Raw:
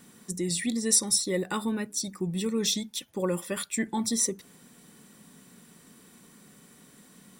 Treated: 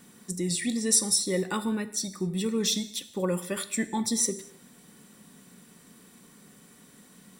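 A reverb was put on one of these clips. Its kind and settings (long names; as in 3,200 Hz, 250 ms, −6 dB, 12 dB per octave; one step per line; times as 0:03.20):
reverb whose tail is shaped and stops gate 280 ms falling, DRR 11.5 dB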